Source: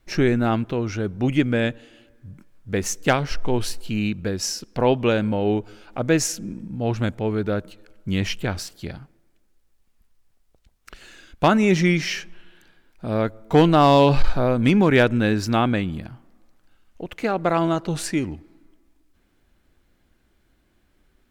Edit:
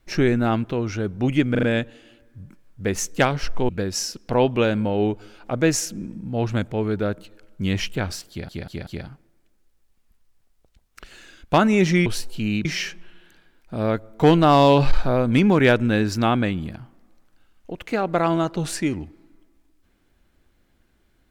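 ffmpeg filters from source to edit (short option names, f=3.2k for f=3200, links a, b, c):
-filter_complex "[0:a]asplit=10[a][b][c][d][e][f][g][h][i][j];[a]atrim=end=1.552[k];[b]atrim=start=1.508:end=1.552[l];[c]atrim=start=1.508:end=1.552[m];[d]atrim=start=1.508:end=3.572[n];[e]atrim=start=4.158:end=8.962[o];[f]atrim=start=8.768:end=8.962[p];[g]atrim=start=8.768:end=8.962[q];[h]atrim=start=8.768:end=11.962[r];[i]atrim=start=3.568:end=4.162[s];[j]atrim=start=11.958[t];[k][l]acrossfade=d=0.004:c1=hsin:c2=hsin[u];[u][m]acrossfade=d=0.004:c1=hsin:c2=hsin[v];[v][n]acrossfade=d=0.004:c1=hsin:c2=hsin[w];[w][o]acrossfade=d=0.004:c1=hsin:c2=hsin[x];[x][p]acrossfade=d=0.004:c1=hsin:c2=hsin[y];[y][q]acrossfade=d=0.004:c1=hsin:c2=hsin[z];[z][r]acrossfade=d=0.004:c1=hsin:c2=hsin[aa];[aa][s]acrossfade=d=0.004:c1=hsin:c2=hsin[ab];[ab][t]acrossfade=d=0.004:c1=hsin:c2=hsin"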